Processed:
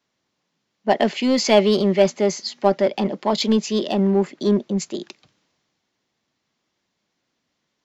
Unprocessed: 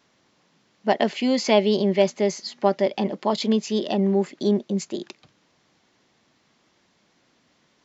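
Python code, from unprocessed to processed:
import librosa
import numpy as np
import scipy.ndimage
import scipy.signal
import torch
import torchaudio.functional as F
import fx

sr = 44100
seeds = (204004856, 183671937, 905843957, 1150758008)

p1 = np.clip(x, -10.0 ** (-21.0 / 20.0), 10.0 ** (-21.0 / 20.0))
p2 = x + (p1 * librosa.db_to_amplitude(-5.0))
y = fx.band_widen(p2, sr, depth_pct=40)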